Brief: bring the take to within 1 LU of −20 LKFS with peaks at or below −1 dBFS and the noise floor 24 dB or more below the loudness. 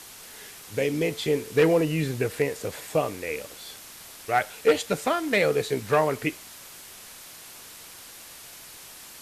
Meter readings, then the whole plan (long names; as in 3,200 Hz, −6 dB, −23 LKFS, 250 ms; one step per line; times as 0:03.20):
background noise floor −45 dBFS; target noise floor −50 dBFS; integrated loudness −25.5 LKFS; sample peak −10.0 dBFS; target loudness −20.0 LKFS
→ broadband denoise 6 dB, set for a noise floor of −45 dBFS
level +5.5 dB